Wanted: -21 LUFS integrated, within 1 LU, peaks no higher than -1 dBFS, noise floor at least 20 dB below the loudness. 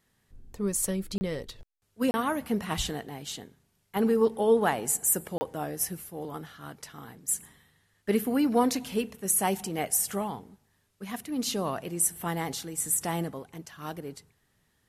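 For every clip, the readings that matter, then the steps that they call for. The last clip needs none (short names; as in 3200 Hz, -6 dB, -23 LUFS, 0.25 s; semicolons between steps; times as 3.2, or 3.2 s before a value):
dropouts 3; longest dropout 30 ms; loudness -29.0 LUFS; peak -11.5 dBFS; loudness target -21.0 LUFS
-> interpolate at 1.18/2.11/5.38, 30 ms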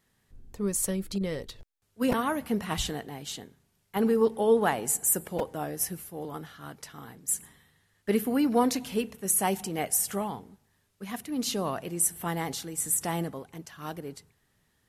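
dropouts 0; loudness -29.0 LUFS; peak -11.5 dBFS; loudness target -21.0 LUFS
-> gain +8 dB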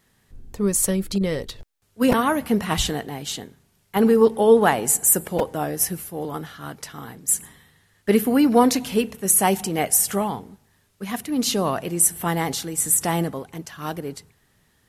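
loudness -21.0 LUFS; peak -3.5 dBFS; noise floor -64 dBFS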